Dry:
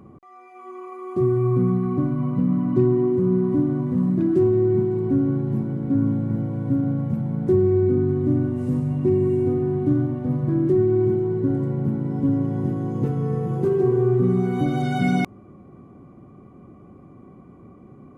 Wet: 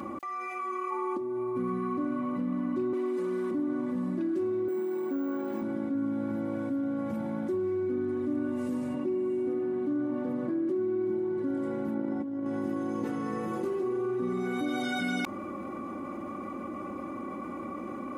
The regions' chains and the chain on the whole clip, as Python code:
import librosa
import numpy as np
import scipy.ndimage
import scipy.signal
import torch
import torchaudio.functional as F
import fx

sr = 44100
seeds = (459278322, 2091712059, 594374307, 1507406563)

y = fx.peak_eq(x, sr, hz=310.0, db=7.0, octaves=1.5, at=(0.9, 1.55), fade=0.02)
y = fx.dmg_tone(y, sr, hz=880.0, level_db=-42.0, at=(0.9, 1.55), fade=0.02)
y = fx.over_compress(y, sr, threshold_db=-19.0, ratio=-0.5, at=(0.9, 1.55), fade=0.02)
y = fx.chain(y, sr, fx.highpass(hz=270.0, slope=12),
    fx.high_shelf(hz=2000.0, db=11.5), at=(2.93, 3.51))
y = fx.chain(y, sr, fx.highpass(hz=310.0, slope=12),
    fx.resample_bad(factor=2, down='filtered', up='hold'), at=(4.68, 5.62))
y = fx.chain(y, sr, fx.highpass(hz=120.0, slope=24),
    fx.tilt_eq(slope=-1.5),
    fx.hum_notches(base_hz=50, count=9), at=(8.94, 11.38))
y = fx.chain(y, sr, fx.high_shelf(hz=3000.0, db=-10.0),
    fx.over_compress(threshold_db=-26.0, ratio=-0.5),
    fx.highpass(hz=53.0, slope=12), at=(11.94, 12.46))
y = fx.highpass(y, sr, hz=710.0, slope=6)
y = y + 0.79 * np.pad(y, (int(3.5 * sr / 1000.0), 0))[:len(y)]
y = fx.env_flatten(y, sr, amount_pct=70)
y = y * librosa.db_to_amplitude(-8.0)